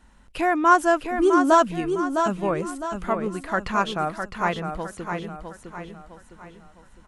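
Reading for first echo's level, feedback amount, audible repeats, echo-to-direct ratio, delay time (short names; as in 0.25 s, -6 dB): -6.5 dB, 41%, 4, -5.5 dB, 0.658 s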